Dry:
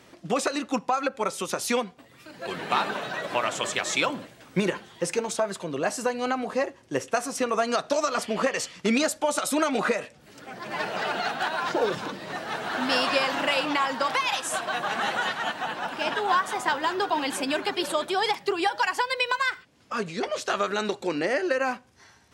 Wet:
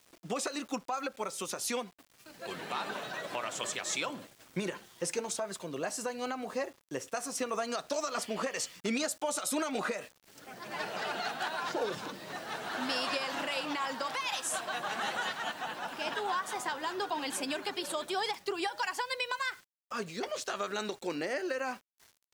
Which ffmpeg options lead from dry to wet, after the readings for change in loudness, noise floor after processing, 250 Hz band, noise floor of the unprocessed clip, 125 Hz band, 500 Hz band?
−8.5 dB, −68 dBFS, −9.0 dB, −55 dBFS, −9.5 dB, −9.0 dB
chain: -af "aeval=exprs='val(0)*gte(abs(val(0)),0.00398)':channel_layout=same,alimiter=limit=-15.5dB:level=0:latency=1:release=138,bass=frequency=250:gain=-1,treble=frequency=4000:gain=5,volume=-7.5dB"

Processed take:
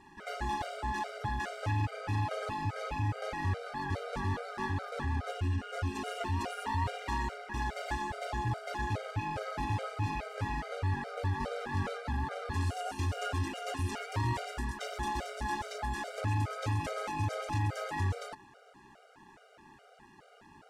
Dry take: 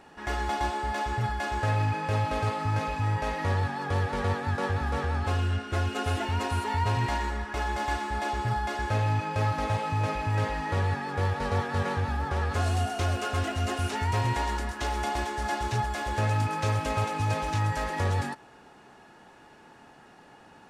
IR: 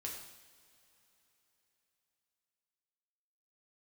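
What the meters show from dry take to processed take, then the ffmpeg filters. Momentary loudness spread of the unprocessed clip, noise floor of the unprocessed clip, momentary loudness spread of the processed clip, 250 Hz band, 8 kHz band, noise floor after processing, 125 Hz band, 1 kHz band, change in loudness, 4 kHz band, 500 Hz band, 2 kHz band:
3 LU, −53 dBFS, 3 LU, −5.0 dB, −6.5 dB, −59 dBFS, −6.5 dB, −7.0 dB, −6.5 dB, −6.5 dB, −6.5 dB, −6.5 dB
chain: -af "tremolo=f=190:d=0.71,asoftclip=type=tanh:threshold=-24.5dB,afftfilt=real='re*gt(sin(2*PI*2.4*pts/sr)*(1-2*mod(floor(b*sr/1024/400),2)),0)':imag='im*gt(sin(2*PI*2.4*pts/sr)*(1-2*mod(floor(b*sr/1024/400),2)),0)':win_size=1024:overlap=0.75,volume=1.5dB"

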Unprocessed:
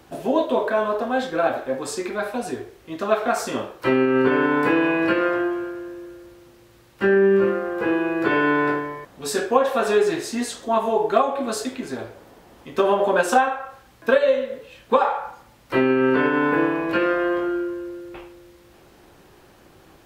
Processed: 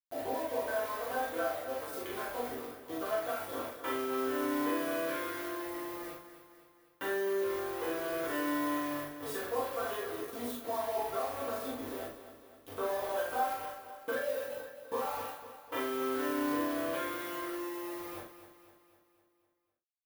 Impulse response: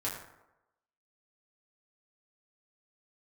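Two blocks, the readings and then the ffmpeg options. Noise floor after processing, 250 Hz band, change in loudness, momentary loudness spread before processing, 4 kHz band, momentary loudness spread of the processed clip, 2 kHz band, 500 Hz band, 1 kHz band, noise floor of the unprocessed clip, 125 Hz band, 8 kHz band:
−71 dBFS, −14.5 dB, −14.0 dB, 14 LU, −10.5 dB, 10 LU, −15.0 dB, −14.5 dB, −13.0 dB, −52 dBFS, −19.0 dB, −10.5 dB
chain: -filter_complex "[0:a]bandreject=frequency=60:width_type=h:width=6,bandreject=frequency=120:width_type=h:width=6,bandreject=frequency=180:width_type=h:width=6,bandreject=frequency=240:width_type=h:width=6,bandreject=frequency=300:width_type=h:width=6,bandreject=frequency=360:width_type=h:width=6,bandreject=frequency=420:width_type=h:width=6,afwtdn=0.0316,highpass=330,equalizer=frequency=3400:width=5.4:gain=14,bandreject=frequency=2600:width=9.2,acompressor=threshold=-36dB:ratio=5,aeval=exprs='val(0)*gte(abs(val(0)),0.00891)':channel_layout=same,aexciter=amount=3.5:drive=5.3:freq=10000,asplit=2[link_01][link_02];[link_02]adelay=41,volume=-3.5dB[link_03];[link_01][link_03]amix=inputs=2:normalize=0,aecho=1:1:253|506|759|1012|1265|1518:0.251|0.133|0.0706|0.0374|0.0198|0.0105[link_04];[1:a]atrim=start_sample=2205,afade=type=out:start_time=0.14:duration=0.01,atrim=end_sample=6615[link_05];[link_04][link_05]afir=irnorm=-1:irlink=0,volume=-3.5dB"

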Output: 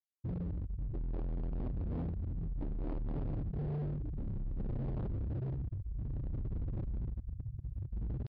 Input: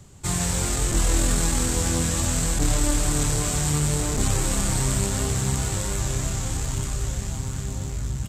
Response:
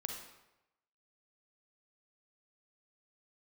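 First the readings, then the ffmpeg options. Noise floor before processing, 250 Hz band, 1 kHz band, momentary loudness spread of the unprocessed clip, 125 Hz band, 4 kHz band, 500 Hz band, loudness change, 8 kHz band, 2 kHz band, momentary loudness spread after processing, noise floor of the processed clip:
−31 dBFS, −14.0 dB, −23.5 dB, 7 LU, −12.0 dB, below −40 dB, −16.5 dB, −16.0 dB, below −40 dB, below −30 dB, 4 LU, −49 dBFS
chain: -af "afftfilt=real='re*gte(hypot(re,im),0.316)':imag='im*gte(hypot(re,im),0.316)':win_size=1024:overlap=0.75,areverse,acompressor=mode=upward:threshold=-34dB:ratio=2.5,areverse,crystalizer=i=8.5:c=0,tremolo=f=0.6:d=0.6,aresample=16000,asoftclip=type=hard:threshold=-33dB,aresample=44100,aresample=11025,aresample=44100,volume=-1.5dB"

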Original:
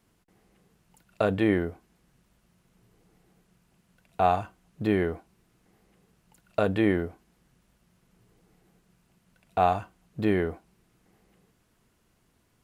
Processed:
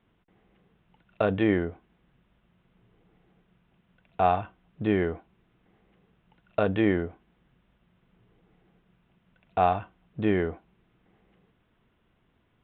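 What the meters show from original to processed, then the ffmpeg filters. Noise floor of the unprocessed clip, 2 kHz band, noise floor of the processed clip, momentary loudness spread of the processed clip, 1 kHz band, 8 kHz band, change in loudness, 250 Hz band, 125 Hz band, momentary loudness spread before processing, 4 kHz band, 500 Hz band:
−69 dBFS, 0.0 dB, −70 dBFS, 13 LU, 0.0 dB, can't be measured, 0.0 dB, 0.0 dB, 0.0 dB, 13 LU, −1.0 dB, 0.0 dB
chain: -af "aresample=8000,aresample=44100"

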